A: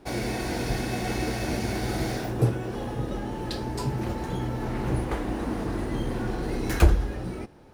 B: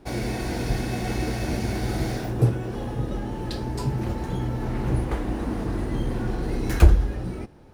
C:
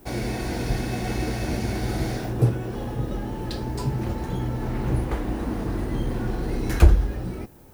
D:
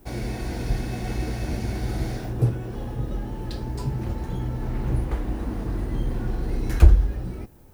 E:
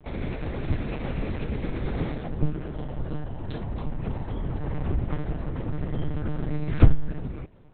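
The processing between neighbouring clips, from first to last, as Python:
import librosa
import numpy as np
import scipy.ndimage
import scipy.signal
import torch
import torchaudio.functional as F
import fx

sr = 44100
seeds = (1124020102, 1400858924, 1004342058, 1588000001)

y1 = fx.low_shelf(x, sr, hz=200.0, db=6.0)
y1 = y1 * librosa.db_to_amplitude(-1.0)
y2 = fx.dmg_noise_colour(y1, sr, seeds[0], colour='violet', level_db=-58.0)
y3 = fx.low_shelf(y2, sr, hz=95.0, db=8.5)
y3 = y3 * librosa.db_to_amplitude(-4.5)
y4 = fx.lpc_monotone(y3, sr, seeds[1], pitch_hz=150.0, order=8)
y4 = y4 * librosa.db_to_amplitude(-1.5)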